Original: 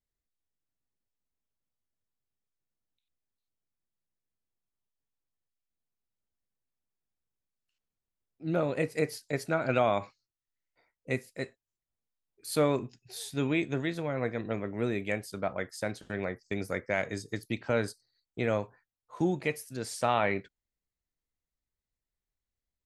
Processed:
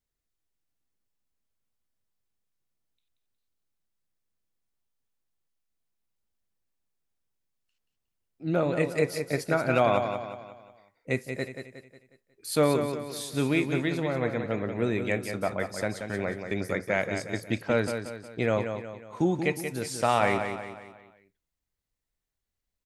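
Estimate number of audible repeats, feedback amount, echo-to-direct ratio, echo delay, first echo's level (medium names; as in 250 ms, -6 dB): 4, 44%, -6.5 dB, 181 ms, -7.5 dB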